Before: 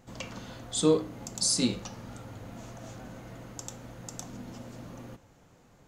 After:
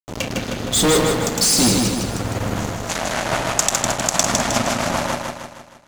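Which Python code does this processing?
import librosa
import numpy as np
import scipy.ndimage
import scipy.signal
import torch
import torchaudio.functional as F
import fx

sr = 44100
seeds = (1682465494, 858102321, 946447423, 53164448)

y = fx.rotary_switch(x, sr, hz=0.7, then_hz=7.5, switch_at_s=2.51)
y = fx.fuzz(y, sr, gain_db=39.0, gate_db=-46.0)
y = fx.spec_box(y, sr, start_s=2.9, length_s=2.33, low_hz=540.0, high_hz=12000.0, gain_db=10)
y = fx.echo_feedback(y, sr, ms=156, feedback_pct=50, wet_db=-3.5)
y = F.gain(torch.from_numpy(y), -1.0).numpy()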